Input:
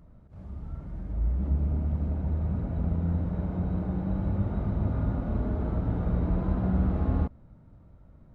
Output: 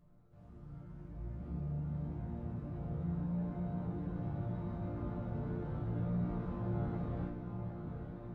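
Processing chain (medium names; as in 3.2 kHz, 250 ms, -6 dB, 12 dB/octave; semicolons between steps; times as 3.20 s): chord resonator A#2 major, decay 0.66 s; saturation -38 dBFS, distortion -21 dB; on a send: echo that smears into a reverb 958 ms, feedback 58%, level -6.5 dB; on the sum: trim +10 dB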